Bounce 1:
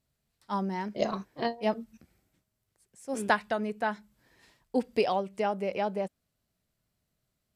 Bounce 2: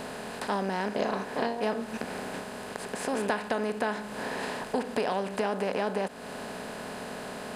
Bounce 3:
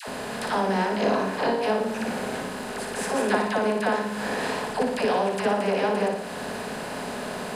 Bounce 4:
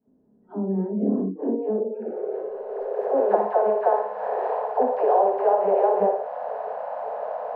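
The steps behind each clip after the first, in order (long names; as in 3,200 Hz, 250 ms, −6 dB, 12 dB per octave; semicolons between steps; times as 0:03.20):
compressor on every frequency bin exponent 0.4; downward compressor 2.5 to 1, threshold −37 dBFS, peak gain reduction 14 dB; level +5.5 dB
all-pass dispersion lows, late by 82 ms, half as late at 650 Hz; on a send: flutter between parallel walls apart 9.9 metres, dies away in 0.64 s; on the sum: level +4.5 dB
echo ahead of the sound 278 ms −14 dB; low-pass filter sweep 290 Hz → 740 Hz, 0:01.29–0:03.60; noise reduction from a noise print of the clip's start 29 dB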